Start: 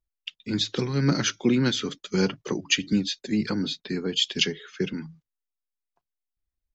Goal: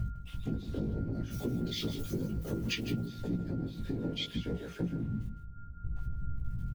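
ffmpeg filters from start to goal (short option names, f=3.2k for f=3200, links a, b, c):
-filter_complex "[0:a]aeval=exprs='val(0)+0.5*0.0944*sgn(val(0))':c=same,asplit=3[a][b][c];[a]afade=t=out:st=1.3:d=0.02[d];[b]aemphasis=mode=production:type=75fm,afade=t=in:st=1.3:d=0.02,afade=t=out:st=3.04:d=0.02[e];[c]afade=t=in:st=3.04:d=0.02[f];[d][e][f]amix=inputs=3:normalize=0,afwtdn=0.1,afftfilt=real='hypot(re,im)*cos(2*PI*random(0))':imag='hypot(re,im)*sin(2*PI*random(1))':win_size=512:overlap=0.75,bass=f=250:g=12,treble=f=4k:g=-6,alimiter=limit=-12.5dB:level=0:latency=1:release=232,acompressor=threshold=-27dB:ratio=12,bandreject=f=50:t=h:w=6,bandreject=f=100:t=h:w=6,bandreject=f=150:t=h:w=6,bandreject=f=200:t=h:w=6,aeval=exprs='val(0)+0.00251*sin(2*PI*1400*n/s)':c=same,flanger=delay=17:depth=2.1:speed=0.65,aecho=1:1:156:0.266"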